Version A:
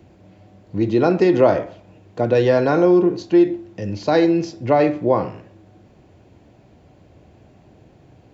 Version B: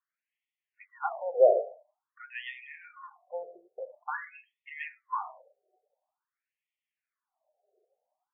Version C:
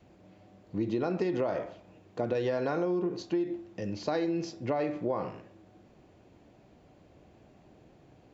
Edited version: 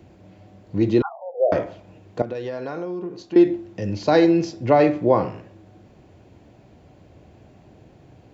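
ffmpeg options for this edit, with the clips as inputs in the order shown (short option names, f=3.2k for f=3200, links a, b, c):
-filter_complex "[0:a]asplit=3[a][b][c];[a]atrim=end=1.022[d];[1:a]atrim=start=1.018:end=1.522[e];[b]atrim=start=1.518:end=2.222[f];[2:a]atrim=start=2.218:end=3.362[g];[c]atrim=start=3.358[h];[d][e]acrossfade=d=0.004:c1=hsin:c2=hsin[i];[i][f]acrossfade=d=0.004:c1=hsin:c2=hsin[j];[j][g]acrossfade=d=0.004:c1=hsin:c2=hsin[k];[k][h]acrossfade=d=0.004:c1=hsin:c2=hsin"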